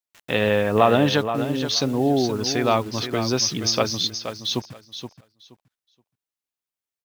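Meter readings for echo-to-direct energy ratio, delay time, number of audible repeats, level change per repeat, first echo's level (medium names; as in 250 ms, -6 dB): -9.5 dB, 474 ms, 2, -15.0 dB, -9.5 dB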